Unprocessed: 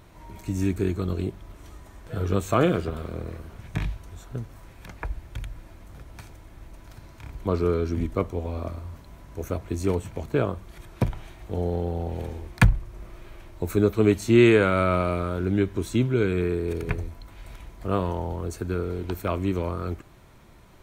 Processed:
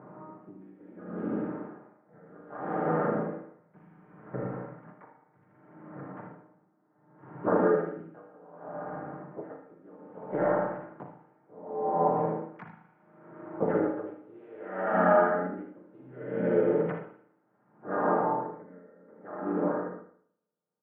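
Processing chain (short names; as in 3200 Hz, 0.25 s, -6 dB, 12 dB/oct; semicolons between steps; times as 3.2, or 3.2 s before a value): ending faded out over 4.12 s; low-pass opened by the level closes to 850 Hz, open at -17 dBFS; elliptic band-pass 150–1400 Hz, stop band 50 dB; tilt +1.5 dB/oct; comb 6.6 ms, depth 92%; dynamic EQ 740 Hz, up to +8 dB, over -43 dBFS, Q 2.6; compressor 3:1, threshold -33 dBFS, peak gain reduction 16 dB; harmoniser +3 st -7 dB, +5 st -7 dB; echo 78 ms -5.5 dB; spring tank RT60 1.2 s, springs 37/55 ms, chirp 60 ms, DRR -0.5 dB; dB-linear tremolo 0.66 Hz, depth 28 dB; gain +5 dB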